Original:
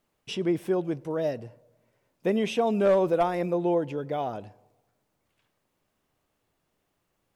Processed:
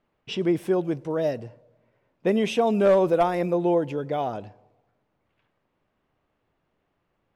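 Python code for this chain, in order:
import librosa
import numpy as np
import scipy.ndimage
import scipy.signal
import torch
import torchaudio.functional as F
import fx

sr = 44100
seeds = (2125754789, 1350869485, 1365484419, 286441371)

y = fx.env_lowpass(x, sr, base_hz=2600.0, full_db=-25.5)
y = F.gain(torch.from_numpy(y), 3.0).numpy()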